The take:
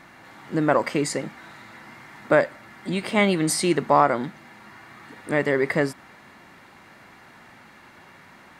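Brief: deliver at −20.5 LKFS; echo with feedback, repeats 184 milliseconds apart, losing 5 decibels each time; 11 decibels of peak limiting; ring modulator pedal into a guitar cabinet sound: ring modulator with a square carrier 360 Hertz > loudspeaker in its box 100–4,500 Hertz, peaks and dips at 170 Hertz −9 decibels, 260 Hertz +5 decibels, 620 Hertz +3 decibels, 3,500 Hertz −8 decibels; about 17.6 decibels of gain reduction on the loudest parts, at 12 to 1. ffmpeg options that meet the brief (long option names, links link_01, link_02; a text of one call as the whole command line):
ffmpeg -i in.wav -af "acompressor=threshold=-30dB:ratio=12,alimiter=level_in=4.5dB:limit=-24dB:level=0:latency=1,volume=-4.5dB,aecho=1:1:184|368|552|736|920|1104|1288:0.562|0.315|0.176|0.0988|0.0553|0.031|0.0173,aeval=exprs='val(0)*sgn(sin(2*PI*360*n/s))':channel_layout=same,highpass=100,equalizer=frequency=170:width_type=q:width=4:gain=-9,equalizer=frequency=260:width_type=q:width=4:gain=5,equalizer=frequency=620:width_type=q:width=4:gain=3,equalizer=frequency=3500:width_type=q:width=4:gain=-8,lowpass=frequency=4500:width=0.5412,lowpass=frequency=4500:width=1.3066,volume=20dB" out.wav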